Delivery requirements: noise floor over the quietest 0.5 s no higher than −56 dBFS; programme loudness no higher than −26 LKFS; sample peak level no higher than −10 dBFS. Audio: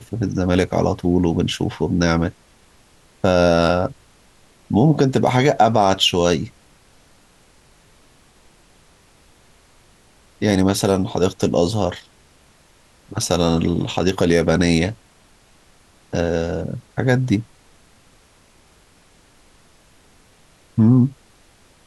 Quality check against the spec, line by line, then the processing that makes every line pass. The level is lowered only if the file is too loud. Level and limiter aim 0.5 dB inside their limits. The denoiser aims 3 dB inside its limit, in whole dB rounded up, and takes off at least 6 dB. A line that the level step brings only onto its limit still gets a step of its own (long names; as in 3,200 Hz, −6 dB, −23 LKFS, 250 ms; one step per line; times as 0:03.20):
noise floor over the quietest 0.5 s −53 dBFS: out of spec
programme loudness −18.5 LKFS: out of spec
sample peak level −3.0 dBFS: out of spec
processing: level −8 dB